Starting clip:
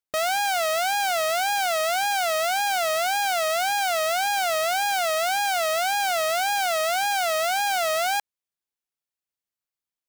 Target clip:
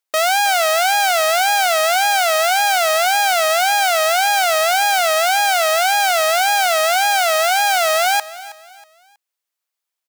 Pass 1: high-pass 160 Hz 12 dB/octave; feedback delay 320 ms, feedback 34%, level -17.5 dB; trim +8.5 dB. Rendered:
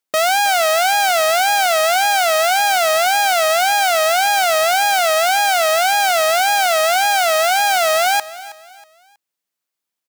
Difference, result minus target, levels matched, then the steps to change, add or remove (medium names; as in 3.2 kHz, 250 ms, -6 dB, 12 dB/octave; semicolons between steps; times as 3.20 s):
125 Hz band +16.5 dB
change: high-pass 500 Hz 12 dB/octave